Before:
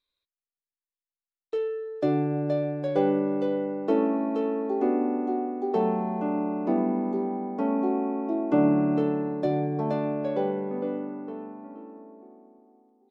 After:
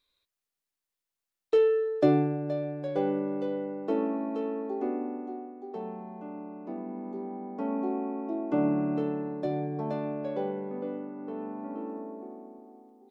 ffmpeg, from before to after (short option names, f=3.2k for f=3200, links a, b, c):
-af "volume=26.5dB,afade=t=out:st=1.79:d=0.59:silence=0.266073,afade=t=out:st=4.59:d=0.96:silence=0.398107,afade=t=in:st=6.83:d=0.92:silence=0.398107,afade=t=in:st=11.15:d=0.76:silence=0.251189"